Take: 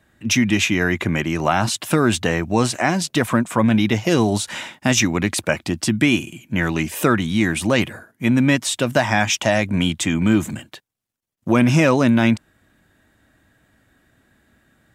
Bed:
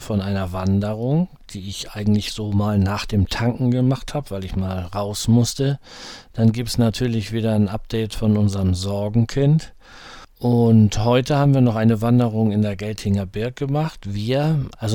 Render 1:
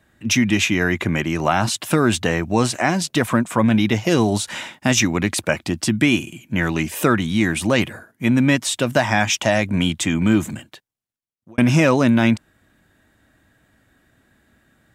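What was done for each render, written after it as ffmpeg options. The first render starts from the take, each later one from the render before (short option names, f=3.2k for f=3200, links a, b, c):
-filter_complex "[0:a]asplit=2[a][b];[a]atrim=end=11.58,asetpts=PTS-STARTPTS,afade=t=out:st=10.38:d=1.2[c];[b]atrim=start=11.58,asetpts=PTS-STARTPTS,afade=t=in:d=0.004:c=hsin[d];[c][d]concat=n=2:v=0:a=1"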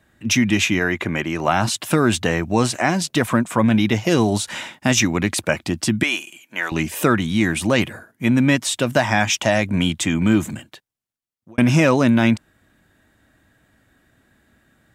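-filter_complex "[0:a]asettb=1/sr,asplit=3[a][b][c];[a]atrim=end=0.794[d];[b]atrim=start=0.79:end=1.48,asetpts=PTS-STARTPTS,afade=t=in:d=0.004:c=qsin,afade=t=out:st=0.686:d=0.004:c=qsin,bass=f=250:g=-5,treble=f=4k:g=-4[e];[c]atrim=start=1.476[f];[d][e]acrossfade=d=0.004:c1=hsin:c2=qsin[g];[g][f]acrossfade=d=0.004:c1=qsin:c2=hsin,asettb=1/sr,asplit=3[h][i][j];[h]atrim=end=6.034[k];[i]atrim=start=6.03:end=6.72,asetpts=PTS-STARTPTS,afade=t=in:d=0.004:c=qsin,afade=t=out:st=0.686:d=0.004:c=qsin,highpass=660[l];[j]atrim=start=6.716[m];[k][l]acrossfade=d=0.004:c1=hsin:c2=qsin[n];[n][m]acrossfade=d=0.004:c1=qsin:c2=hsin"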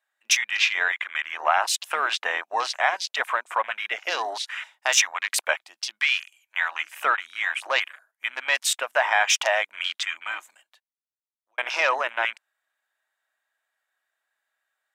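-af "highpass=f=710:w=0.5412,highpass=f=710:w=1.3066,afwtdn=0.0316"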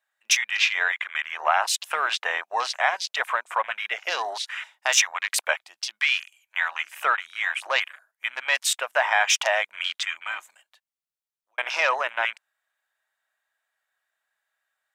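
-af "equalizer=f=280:t=o:w=0.73:g=-8.5"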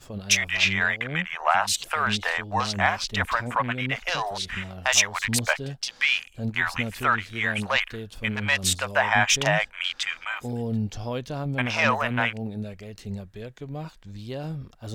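-filter_complex "[1:a]volume=-14dB[a];[0:a][a]amix=inputs=2:normalize=0"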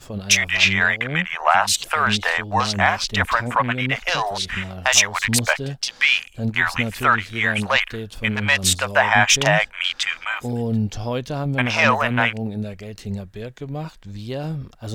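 -af "volume=5.5dB,alimiter=limit=-2dB:level=0:latency=1"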